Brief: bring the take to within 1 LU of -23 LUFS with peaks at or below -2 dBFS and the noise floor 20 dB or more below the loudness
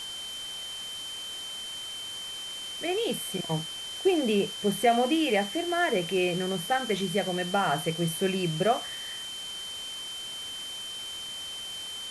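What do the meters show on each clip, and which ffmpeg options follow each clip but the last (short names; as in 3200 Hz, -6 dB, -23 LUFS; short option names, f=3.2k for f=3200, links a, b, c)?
steady tone 3100 Hz; tone level -36 dBFS; noise floor -38 dBFS; noise floor target -50 dBFS; loudness -29.5 LUFS; peak -12.0 dBFS; loudness target -23.0 LUFS
-> -af "bandreject=f=3.1k:w=30"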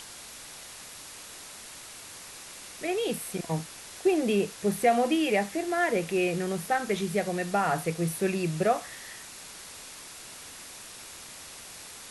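steady tone none; noise floor -45 dBFS; noise floor target -48 dBFS
-> -af "afftdn=nr=6:nf=-45"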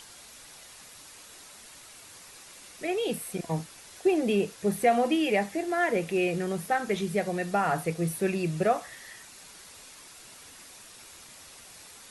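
noise floor -50 dBFS; loudness -28.0 LUFS; peak -12.0 dBFS; loudness target -23.0 LUFS
-> -af "volume=5dB"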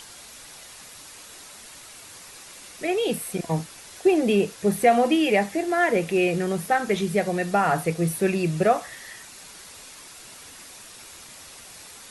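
loudness -23.0 LUFS; peak -7.0 dBFS; noise floor -45 dBFS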